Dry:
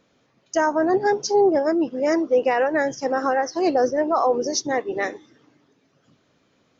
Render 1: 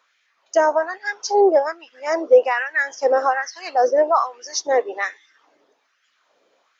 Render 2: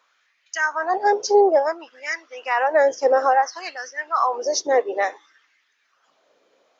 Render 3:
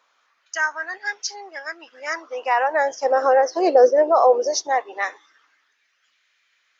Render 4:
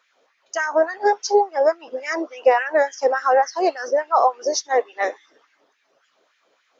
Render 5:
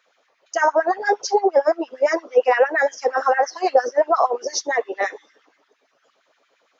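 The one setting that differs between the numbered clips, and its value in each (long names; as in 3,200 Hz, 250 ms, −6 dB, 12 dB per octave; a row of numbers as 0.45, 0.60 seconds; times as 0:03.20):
auto-filter high-pass, speed: 1.2, 0.58, 0.2, 3.5, 8.7 Hertz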